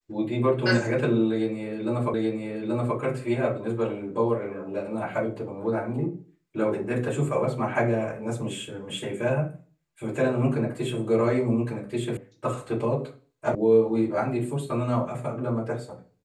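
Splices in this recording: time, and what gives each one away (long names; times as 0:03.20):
0:02.14: the same again, the last 0.83 s
0:12.17: cut off before it has died away
0:13.55: cut off before it has died away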